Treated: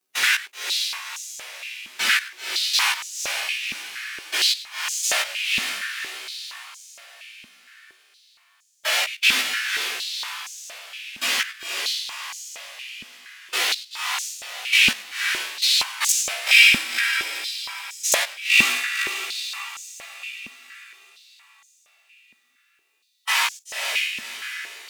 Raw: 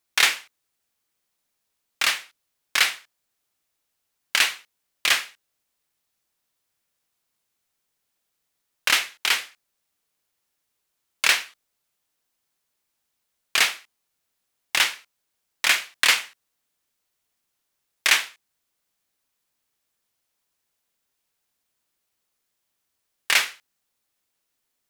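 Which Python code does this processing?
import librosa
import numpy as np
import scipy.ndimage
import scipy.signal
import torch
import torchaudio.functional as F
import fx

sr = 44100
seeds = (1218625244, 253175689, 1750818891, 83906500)

y = fx.pitch_bins(x, sr, semitones=1.5)
y = fx.level_steps(y, sr, step_db=19)
y = fx.doubler(y, sr, ms=16.0, db=-4.0)
y = fx.echo_diffused(y, sr, ms=513, feedback_pct=47, wet_db=-5)
y = fx.fold_sine(y, sr, drive_db=17, ceiling_db=-8.5)
y = fx.hpss(y, sr, part='percussive', gain_db=-6)
y = fx.filter_held_highpass(y, sr, hz=4.3, low_hz=230.0, high_hz=6600.0)
y = F.gain(torch.from_numpy(y), -3.0).numpy()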